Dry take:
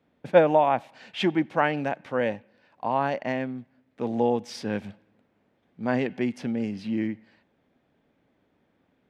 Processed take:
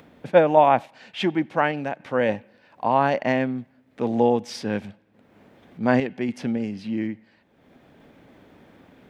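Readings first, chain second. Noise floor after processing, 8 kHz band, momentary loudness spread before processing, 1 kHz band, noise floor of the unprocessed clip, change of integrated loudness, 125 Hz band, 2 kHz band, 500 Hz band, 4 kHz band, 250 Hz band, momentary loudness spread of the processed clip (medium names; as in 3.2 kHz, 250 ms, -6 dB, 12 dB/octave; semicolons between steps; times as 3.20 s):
-60 dBFS, no reading, 14 LU, +4.5 dB, -70 dBFS, +3.5 dB, +3.5 dB, +3.0 dB, +3.0 dB, +2.0 dB, +3.0 dB, 13 LU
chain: random-step tremolo 3.5 Hz, depth 55%; upward compressor, threshold -46 dBFS; trim +6.5 dB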